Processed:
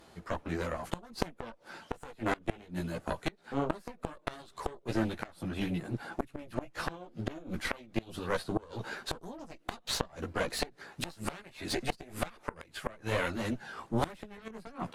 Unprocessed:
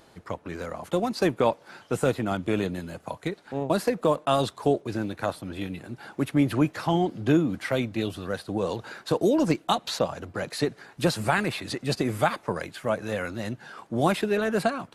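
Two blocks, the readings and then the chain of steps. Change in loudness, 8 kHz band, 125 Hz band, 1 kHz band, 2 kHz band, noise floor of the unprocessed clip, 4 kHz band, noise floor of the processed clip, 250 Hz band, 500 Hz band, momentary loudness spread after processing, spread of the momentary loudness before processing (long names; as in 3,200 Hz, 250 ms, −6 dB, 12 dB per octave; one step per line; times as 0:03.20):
−10.0 dB, −5.0 dB, −9.0 dB, −9.5 dB, −6.5 dB, −56 dBFS, −6.5 dB, −61 dBFS, −11.0 dB, −12.0 dB, 10 LU, 11 LU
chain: harmonic generator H 4 −7 dB, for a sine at −9 dBFS
multi-voice chorus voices 6, 1.4 Hz, delay 15 ms, depth 3 ms
gate with flip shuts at −17 dBFS, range −25 dB
level +1.5 dB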